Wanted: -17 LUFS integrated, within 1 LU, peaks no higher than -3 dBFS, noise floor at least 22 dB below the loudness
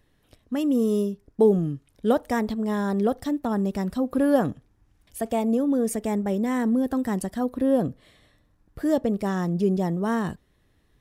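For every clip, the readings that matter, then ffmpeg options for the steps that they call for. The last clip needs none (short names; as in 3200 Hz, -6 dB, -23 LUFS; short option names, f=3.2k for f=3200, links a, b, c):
loudness -25.0 LUFS; peak -8.5 dBFS; loudness target -17.0 LUFS
-> -af "volume=8dB,alimiter=limit=-3dB:level=0:latency=1"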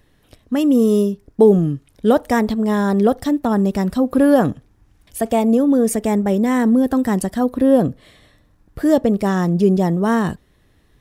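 loudness -17.0 LUFS; peak -3.0 dBFS; noise floor -57 dBFS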